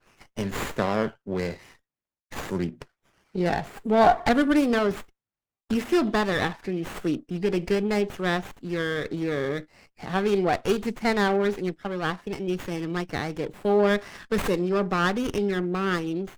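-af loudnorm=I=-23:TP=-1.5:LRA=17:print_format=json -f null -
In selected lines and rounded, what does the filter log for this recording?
"input_i" : "-25.9",
"input_tp" : "-7.7",
"input_lra" : "3.8",
"input_thresh" : "-36.2",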